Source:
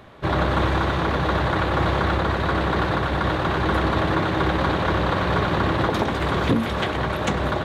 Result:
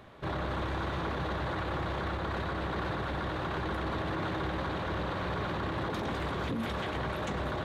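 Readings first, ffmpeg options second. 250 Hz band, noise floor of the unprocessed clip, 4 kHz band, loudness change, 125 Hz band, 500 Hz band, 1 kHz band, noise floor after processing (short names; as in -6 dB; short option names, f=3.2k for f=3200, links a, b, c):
-12.0 dB, -26 dBFS, -11.5 dB, -12.0 dB, -12.0 dB, -12.0 dB, -12.0 dB, -36 dBFS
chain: -af "alimiter=limit=-19.5dB:level=0:latency=1:release=18,volume=-6.5dB"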